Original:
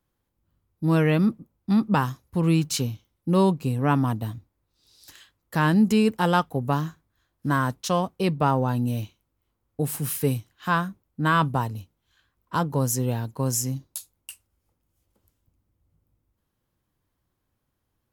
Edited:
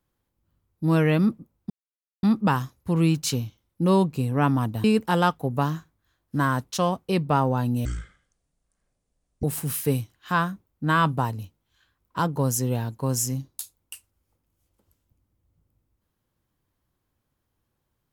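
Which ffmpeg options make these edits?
-filter_complex "[0:a]asplit=5[a][b][c][d][e];[a]atrim=end=1.7,asetpts=PTS-STARTPTS,afade=t=out:st=1.696:d=0.004:c=hsin,apad=pad_dur=0.53[f];[b]atrim=start=1.7:end=4.312,asetpts=PTS-STARTPTS,afade=t=in:d=0.004:c=hsin[g];[c]atrim=start=5.948:end=8.964[h];[d]atrim=start=8.96:end=9.8,asetpts=PTS-STARTPTS,asetrate=23373,aresample=44100,atrim=end_sample=69894,asetpts=PTS-STARTPTS[i];[e]atrim=start=9.796[j];[f][g]concat=n=2:v=0:a=1[k];[k][h]acrossfade=d=0.004:c1=hsin:c2=hsin[l];[l][i]acrossfade=d=0.004:c1=hsin:c2=hsin[m];[m][j]acrossfade=d=0.004:c1=hsin:c2=hsin"

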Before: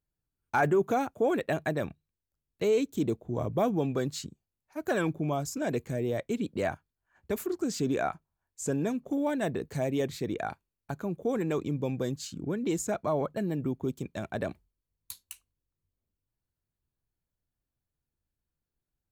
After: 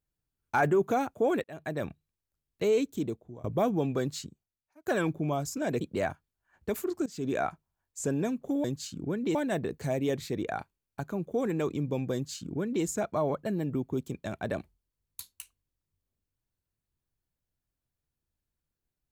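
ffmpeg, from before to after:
-filter_complex "[0:a]asplit=8[a][b][c][d][e][f][g][h];[a]atrim=end=1.44,asetpts=PTS-STARTPTS,afade=t=out:st=1.436:d=0.004:c=hsin[i];[b]atrim=start=1.44:end=3.44,asetpts=PTS-STARTPTS,afade=t=in:d=0.44,afade=t=out:st=1.38:d=0.62:silence=0.0794328[j];[c]atrim=start=3.44:end=4.86,asetpts=PTS-STARTPTS,afade=t=in:d=0.004:c=hsin:silence=0.0794328,afade=t=out:st=0.66:d=0.76[k];[d]atrim=start=4.86:end=5.812,asetpts=PTS-STARTPTS,afade=t=in:d=0.004:c=hsin[l];[e]atrim=start=6.428:end=7.68,asetpts=PTS-STARTPTS,afade=t=out:st=1.248:d=0.004:c=hsin:silence=0.0944061[m];[f]atrim=start=7.68:end=9.262,asetpts=PTS-STARTPTS,afade=t=in:d=0.31:silence=0.0944061[n];[g]atrim=start=12.038:end=12.752[o];[h]atrim=start=9.258[p];[i][j][k][l]concat=n=4:v=0:a=1[q];[m][n]concat=n=2:v=0:a=1[r];[q][r]acrossfade=d=0.004:c1=hsin:c2=hsin[s];[s][o]acrossfade=d=0.004:c1=hsin:c2=hsin[t];[t][p]acrossfade=d=0.004:c1=hsin:c2=hsin"

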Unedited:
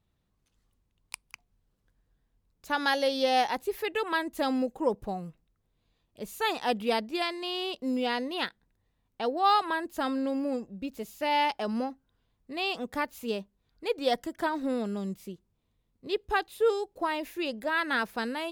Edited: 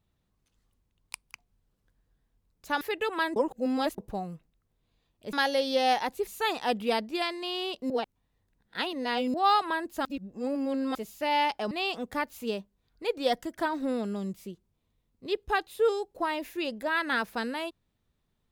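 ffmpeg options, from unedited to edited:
-filter_complex "[0:a]asplit=11[a][b][c][d][e][f][g][h][i][j][k];[a]atrim=end=2.812[l];[b]atrim=start=3.748:end=4.302[m];[c]atrim=start=4.298:end=4.922,asetpts=PTS-STARTPTS,areverse[n];[d]atrim=start=4.918:end=6.272[o];[e]atrim=start=2.808:end=3.752[p];[f]atrim=start=6.268:end=7.902[q];[g]atrim=start=7.898:end=9.342,asetpts=PTS-STARTPTS,areverse[r];[h]atrim=start=9.338:end=10.052[s];[i]atrim=start=10.048:end=10.952,asetpts=PTS-STARTPTS,areverse[t];[j]atrim=start=10.948:end=11.712[u];[k]atrim=start=12.518[v];[l][m]acrossfade=d=0.004:c1=hsin:c2=hsin[w];[w][n]acrossfade=d=0.004:c1=hsin:c2=hsin[x];[x][o]acrossfade=d=0.004:c1=hsin:c2=hsin[y];[y][p]acrossfade=d=0.004:c1=hsin:c2=hsin[z];[z][q]acrossfade=d=0.004:c1=hsin:c2=hsin[aa];[aa][r]acrossfade=d=0.004:c1=hsin:c2=hsin[ab];[ab][s]acrossfade=d=0.004:c1=hsin:c2=hsin[ac];[ac][t]acrossfade=d=0.004:c1=hsin:c2=hsin[ad];[ad][u]acrossfade=d=0.004:c1=hsin:c2=hsin[ae];[ae][v]acrossfade=d=0.004:c1=hsin:c2=hsin"

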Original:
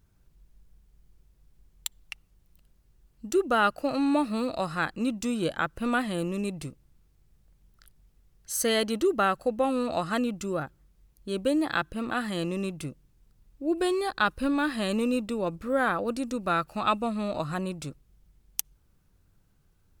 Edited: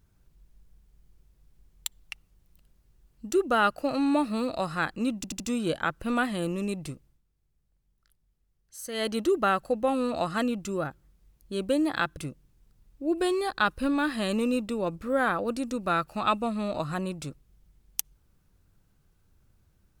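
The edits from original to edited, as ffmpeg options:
-filter_complex "[0:a]asplit=7[a][b][c][d][e][f][g];[a]atrim=end=5.242[h];[b]atrim=start=5.158:end=5.242[i];[c]atrim=start=5.158:end=5.242[j];[d]atrim=start=5.158:end=6.97,asetpts=PTS-STARTPTS,afade=t=out:st=1.512:d=0.3:c=qsin:silence=0.266073[k];[e]atrim=start=6.97:end=8.68,asetpts=PTS-STARTPTS,volume=-11.5dB[l];[f]atrim=start=8.68:end=11.932,asetpts=PTS-STARTPTS,afade=t=in:d=0.3:c=qsin:silence=0.266073[m];[g]atrim=start=12.768[n];[h][i]acrossfade=d=0.004:c1=hsin:c2=hsin[o];[o][j]acrossfade=d=0.004:c1=hsin:c2=hsin[p];[k][l][m]concat=n=3:v=0:a=1[q];[p][q]acrossfade=d=0.004:c1=hsin:c2=hsin[r];[r][n]acrossfade=d=0.004:c1=hsin:c2=hsin"

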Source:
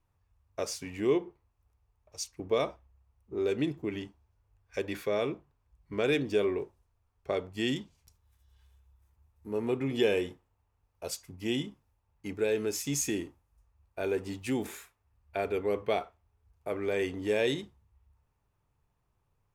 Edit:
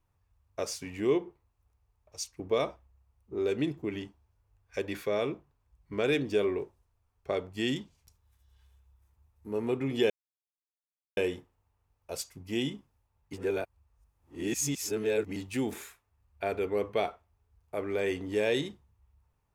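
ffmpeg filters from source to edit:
-filter_complex "[0:a]asplit=4[a][b][c][d];[a]atrim=end=10.1,asetpts=PTS-STARTPTS,afade=t=out:st=10.096:d=0.004:c=hsin,apad=pad_dur=1.07[e];[b]atrim=start=10.1:end=12.262,asetpts=PTS-STARTPTS,afade=t=in:d=0.004:c=hsin[f];[c]atrim=start=12.258:end=14.292,asetpts=PTS-STARTPTS,areverse[g];[d]atrim=start=14.288[h];[e][f]concat=n=2:v=0:a=1[i];[i][g]acrossfade=d=0.004:c1=hsin:c2=hsin[j];[j][h]acrossfade=d=0.004:c1=hsin:c2=hsin"

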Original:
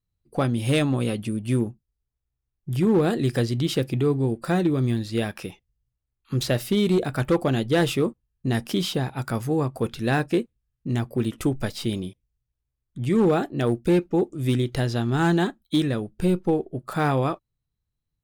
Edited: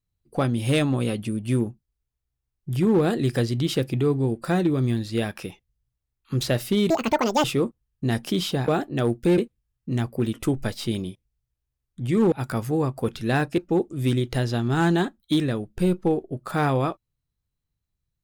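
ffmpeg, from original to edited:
-filter_complex "[0:a]asplit=7[a][b][c][d][e][f][g];[a]atrim=end=6.904[h];[b]atrim=start=6.9:end=7.86,asetpts=PTS-STARTPTS,asetrate=78498,aresample=44100,atrim=end_sample=23784,asetpts=PTS-STARTPTS[i];[c]atrim=start=7.856:end=9.102[j];[d]atrim=start=13.298:end=14.002[k];[e]atrim=start=10.358:end=13.302[l];[f]atrim=start=9.098:end=10.362[m];[g]atrim=start=13.998[n];[h][i]acrossfade=d=0.004:c1=hsin:c2=hsin[o];[o][j]acrossfade=d=0.004:c1=hsin:c2=hsin[p];[p][k]acrossfade=d=0.004:c1=hsin:c2=hsin[q];[q][l]acrossfade=d=0.004:c1=hsin:c2=hsin[r];[r][m]acrossfade=d=0.004:c1=hsin:c2=hsin[s];[s][n]acrossfade=d=0.004:c1=hsin:c2=hsin"

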